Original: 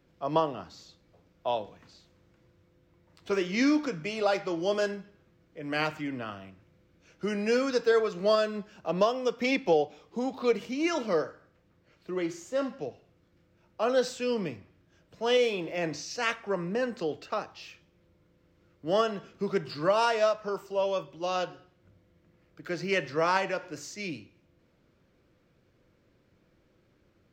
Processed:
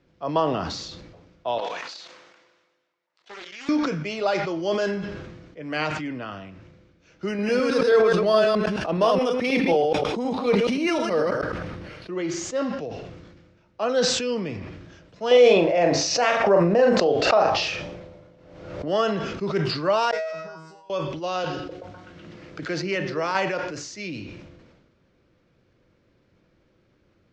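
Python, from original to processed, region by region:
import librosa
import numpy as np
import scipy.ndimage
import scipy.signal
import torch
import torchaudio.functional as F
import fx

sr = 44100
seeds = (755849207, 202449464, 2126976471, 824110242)

y = fx.chain(x, sr, fx.highpass(hz=750.0, slope=12),
    fx.level_steps(step_db=14),
    fx.doppler_dist(depth_ms=0.41), at=(1.58, 3.69))
y = fx.chain(y, sr, fx.reverse_delay(ms=106, wet_db=-3.5),
    fx.resample_bad(factor=3, down='filtered', up='hold'),
    fx.sustainer(db_per_s=27.0), at=(7.28, 12.13))
y = fx.chain(y, sr, fx.peak_eq(hz=650.0, db=12.0, octaves=1.0),
    fx.doubler(ms=41.0, db=-7.0),
    fx.pre_swell(db_per_s=53.0), at=(15.31, 18.88))
y = fx.chain(y, sr, fx.peak_eq(hz=2900.0, db=-7.5, octaves=0.4),
    fx.over_compress(threshold_db=-33.0, ratio=-1.0),
    fx.comb_fb(f0_hz=160.0, decay_s=0.88, harmonics='all', damping=0.0, mix_pct=100), at=(20.11, 20.9))
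y = fx.chain(y, sr, fx.echo_stepped(ms=125, hz=250.0, octaves=0.7, feedback_pct=70, wet_db=-7.5),
    fx.band_squash(depth_pct=70), at=(21.44, 23.35))
y = scipy.signal.sosfilt(scipy.signal.butter(4, 6700.0, 'lowpass', fs=sr, output='sos'), y)
y = fx.sustainer(y, sr, db_per_s=39.0)
y = y * librosa.db_to_amplitude(2.5)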